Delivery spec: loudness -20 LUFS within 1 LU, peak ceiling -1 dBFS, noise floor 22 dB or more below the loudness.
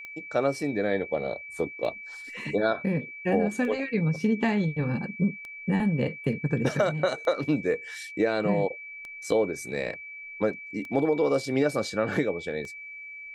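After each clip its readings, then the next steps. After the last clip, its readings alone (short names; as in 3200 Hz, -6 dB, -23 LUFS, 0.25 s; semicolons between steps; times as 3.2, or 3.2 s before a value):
clicks 8; steady tone 2300 Hz; tone level -39 dBFS; loudness -28.0 LUFS; peak -10.5 dBFS; loudness target -20.0 LUFS
-> de-click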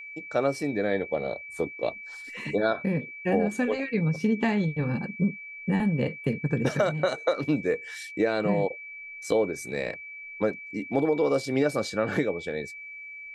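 clicks 0; steady tone 2300 Hz; tone level -39 dBFS
-> notch 2300 Hz, Q 30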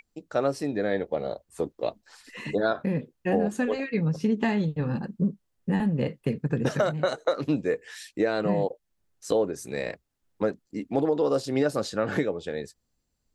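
steady tone none; loudness -28.0 LUFS; peak -11.0 dBFS; loudness target -20.0 LUFS
-> gain +8 dB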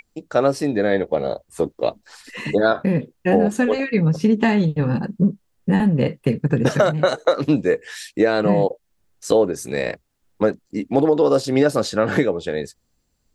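loudness -20.0 LUFS; peak -3.0 dBFS; noise floor -69 dBFS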